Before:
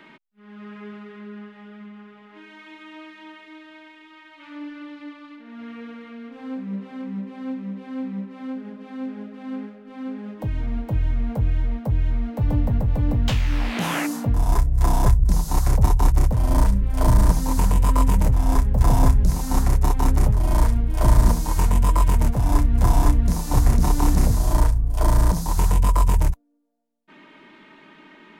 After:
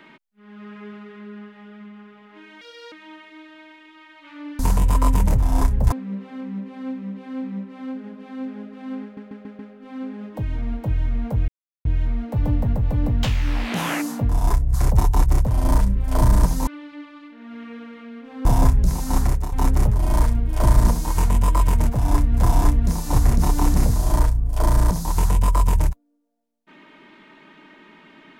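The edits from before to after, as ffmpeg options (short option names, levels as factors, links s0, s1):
-filter_complex "[0:a]asplit=15[s0][s1][s2][s3][s4][s5][s6][s7][s8][s9][s10][s11][s12][s13][s14];[s0]atrim=end=2.614[s15];[s1]atrim=start=2.61:end=3.08,asetpts=PTS-STARTPTS,asetrate=66591,aresample=44100,atrim=end_sample=13726,asetpts=PTS-STARTPTS[s16];[s2]atrim=start=3.076:end=4.752[s17];[s3]atrim=start=17.528:end=18.862[s18];[s4]atrim=start=6.528:end=9.782[s19];[s5]atrim=start=9.638:end=9.782[s20];[s6]atrim=start=9.638:end=9.782[s21];[s7]atrim=start=9.638:end=9.782[s22];[s8]atrim=start=9.638:end=11.53,asetpts=PTS-STARTPTS,afade=t=out:st=1.888:d=0.004:c=hsin[s23];[s9]atrim=start=11.53:end=11.9,asetpts=PTS-STARTPTS,volume=0[s24];[s10]atrim=start=11.9:end=14.792,asetpts=PTS-STARTPTS,afade=t=in:d=0.004:c=hsin[s25];[s11]atrim=start=15.598:end=17.532[s26];[s12]atrim=start=4.748:end=6.532[s27];[s13]atrim=start=18.858:end=19.93,asetpts=PTS-STARTPTS,afade=t=out:st=0.812:d=0.26:silence=0.199526[s28];[s14]atrim=start=19.93,asetpts=PTS-STARTPTS,afade=t=in:d=0.004:c=hsin:silence=0.199526[s29];[s15][s16]acrossfade=d=0.004:c1=hsin:c2=hsin[s30];[s30][s17]acrossfade=d=0.004:c1=hsin:c2=hsin[s31];[s31][s18]acrossfade=d=0.004:c1=hsin:c2=hsin[s32];[s32][s19]acrossfade=d=0.004:c1=hsin:c2=hsin[s33];[s33][s20]acrossfade=d=0.004:c1=hsin:c2=hsin[s34];[s34][s21]acrossfade=d=0.004:c1=hsin:c2=hsin[s35];[s35][s22]acrossfade=d=0.004:c1=hsin:c2=hsin[s36];[s23][s24][s25]concat=n=3:v=0:a=1[s37];[s36][s37]acrossfade=d=0.004:c1=hsin:c2=hsin[s38];[s38][s26]acrossfade=d=0.004:c1=hsin:c2=hsin[s39];[s39][s27]acrossfade=d=0.004:c1=hsin:c2=hsin[s40];[s28][s29]concat=n=2:v=0:a=1[s41];[s40][s41]acrossfade=d=0.004:c1=hsin:c2=hsin"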